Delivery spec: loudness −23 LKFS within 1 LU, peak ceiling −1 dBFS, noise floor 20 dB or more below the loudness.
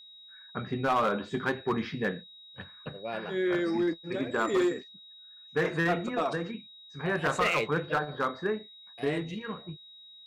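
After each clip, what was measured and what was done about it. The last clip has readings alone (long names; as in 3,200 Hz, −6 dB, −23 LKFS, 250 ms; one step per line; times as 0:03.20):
share of clipped samples 0.9%; peaks flattened at −21.0 dBFS; interfering tone 3,800 Hz; level of the tone −49 dBFS; integrated loudness −30.5 LKFS; sample peak −21.0 dBFS; target loudness −23.0 LKFS
→ clipped peaks rebuilt −21 dBFS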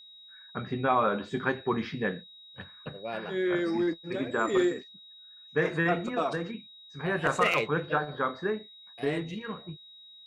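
share of clipped samples 0.0%; interfering tone 3,800 Hz; level of the tone −49 dBFS
→ notch filter 3,800 Hz, Q 30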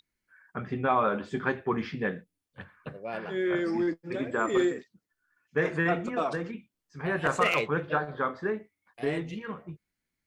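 interfering tone none found; integrated loudness −30.0 LKFS; sample peak −12.0 dBFS; target loudness −23.0 LKFS
→ level +7 dB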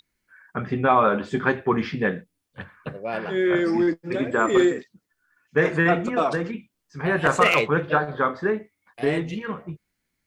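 integrated loudness −23.0 LKFS; sample peak −5.0 dBFS; background noise floor −78 dBFS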